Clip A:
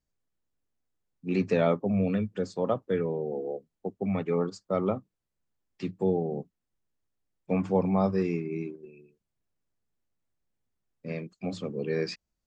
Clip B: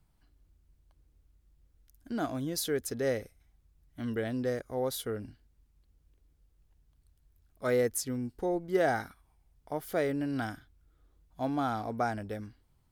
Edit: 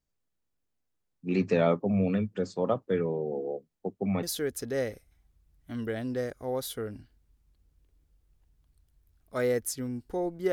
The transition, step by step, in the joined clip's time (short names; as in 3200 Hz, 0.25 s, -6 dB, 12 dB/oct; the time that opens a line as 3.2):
clip A
4.23 switch to clip B from 2.52 s